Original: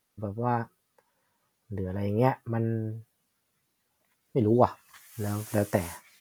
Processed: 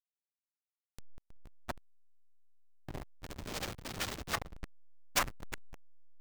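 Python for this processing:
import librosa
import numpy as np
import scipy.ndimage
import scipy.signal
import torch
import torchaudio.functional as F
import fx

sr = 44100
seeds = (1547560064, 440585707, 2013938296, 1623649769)

y = fx.bin_compress(x, sr, power=0.6)
y = fx.recorder_agc(y, sr, target_db=-8.5, rise_db_per_s=47.0, max_gain_db=30)
y = fx.spec_gate(y, sr, threshold_db=-25, keep='weak')
y = fx.peak_eq(y, sr, hz=11000.0, db=-11.5, octaves=0.5)
y = fx.hum_notches(y, sr, base_hz=50, count=4)
y = fx.leveller(y, sr, passes=2, at=(2.88, 5.23))
y = fx.backlash(y, sr, play_db=-20.0)
y = y * 10.0 ** (2.0 / 20.0)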